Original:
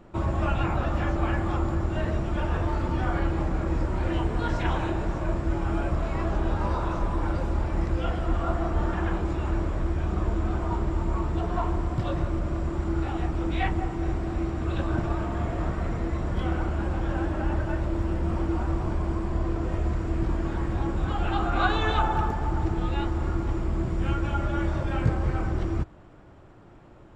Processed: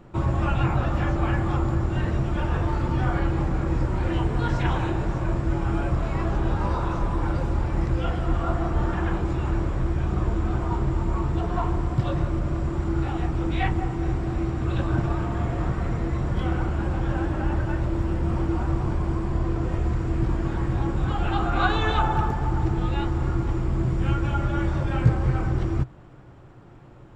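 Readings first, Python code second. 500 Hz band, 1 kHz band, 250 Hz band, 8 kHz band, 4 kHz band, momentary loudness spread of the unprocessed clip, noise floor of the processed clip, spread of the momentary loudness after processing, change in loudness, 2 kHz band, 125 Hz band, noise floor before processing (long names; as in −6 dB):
+1.0 dB, +1.5 dB, +2.0 dB, can't be measured, +1.5 dB, 3 LU, −44 dBFS, 3 LU, +2.5 dB, +1.5 dB, +4.0 dB, −48 dBFS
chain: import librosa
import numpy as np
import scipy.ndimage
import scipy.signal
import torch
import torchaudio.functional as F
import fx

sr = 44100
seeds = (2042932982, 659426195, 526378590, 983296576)

y = fx.peak_eq(x, sr, hz=130.0, db=9.0, octaves=0.32)
y = fx.notch(y, sr, hz=630.0, q=14.0)
y = y * librosa.db_to_amplitude(1.5)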